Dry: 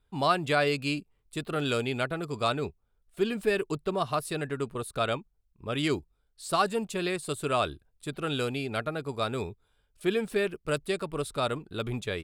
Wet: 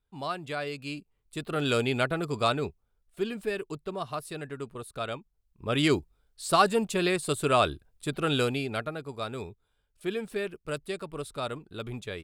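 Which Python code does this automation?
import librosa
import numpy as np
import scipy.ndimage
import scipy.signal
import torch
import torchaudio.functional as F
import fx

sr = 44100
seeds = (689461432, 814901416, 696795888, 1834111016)

y = fx.gain(x, sr, db=fx.line((0.74, -8.5), (1.8, 3.0), (2.3, 3.0), (3.59, -5.5), (5.18, -5.5), (5.73, 4.0), (8.41, 4.0), (9.07, -4.5)))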